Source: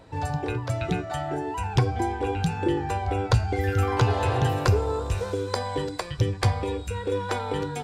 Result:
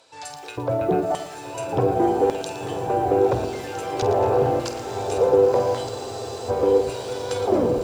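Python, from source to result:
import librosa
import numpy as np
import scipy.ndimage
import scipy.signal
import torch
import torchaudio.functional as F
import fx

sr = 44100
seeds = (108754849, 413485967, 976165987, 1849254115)

p1 = fx.tape_stop_end(x, sr, length_s=0.39)
p2 = fx.peak_eq(p1, sr, hz=540.0, db=6.5, octaves=1.5)
p3 = fx.notch(p2, sr, hz=1900.0, q=6.7)
p4 = fx.rider(p3, sr, range_db=10, speed_s=0.5)
p5 = p3 + F.gain(torch.from_numpy(p4), 2.0).numpy()
p6 = 10.0 ** (-9.5 / 20.0) * np.tanh(p5 / 10.0 ** (-9.5 / 20.0))
p7 = fx.filter_lfo_bandpass(p6, sr, shape='square', hz=0.87, low_hz=450.0, high_hz=6300.0, q=1.0)
p8 = fx.doubler(p7, sr, ms=49.0, db=-12.0)
p9 = p8 + fx.echo_diffused(p8, sr, ms=1047, feedback_pct=52, wet_db=-5.0, dry=0)
p10 = fx.spec_freeze(p9, sr, seeds[0], at_s=5.93, hold_s=0.55)
y = fx.echo_crushed(p10, sr, ms=115, feedback_pct=55, bits=7, wet_db=-12.0)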